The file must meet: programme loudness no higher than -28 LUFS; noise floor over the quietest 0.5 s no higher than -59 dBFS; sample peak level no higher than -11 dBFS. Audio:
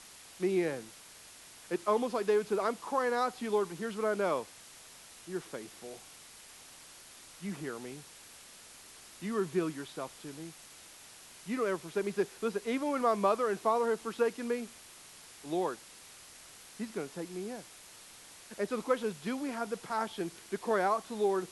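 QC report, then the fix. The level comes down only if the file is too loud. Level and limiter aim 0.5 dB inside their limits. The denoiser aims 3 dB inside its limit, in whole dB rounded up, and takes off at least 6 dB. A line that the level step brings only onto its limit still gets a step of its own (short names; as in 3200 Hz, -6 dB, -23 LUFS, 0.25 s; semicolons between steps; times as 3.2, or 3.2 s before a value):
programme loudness -33.5 LUFS: OK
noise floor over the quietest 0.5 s -53 dBFS: fail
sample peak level -15.5 dBFS: OK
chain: denoiser 9 dB, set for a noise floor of -53 dBFS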